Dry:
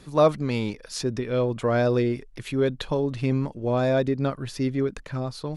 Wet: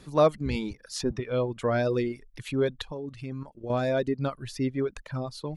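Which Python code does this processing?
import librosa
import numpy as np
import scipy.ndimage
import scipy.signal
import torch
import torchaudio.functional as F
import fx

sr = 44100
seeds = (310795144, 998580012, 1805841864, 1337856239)

y = fx.octave_divider(x, sr, octaves=1, level_db=-3.0, at=(0.45, 1.2))
y = fx.dereverb_blind(y, sr, rt60_s=1.1)
y = fx.level_steps(y, sr, step_db=11, at=(2.82, 3.7))
y = F.gain(torch.from_numpy(y), -2.0).numpy()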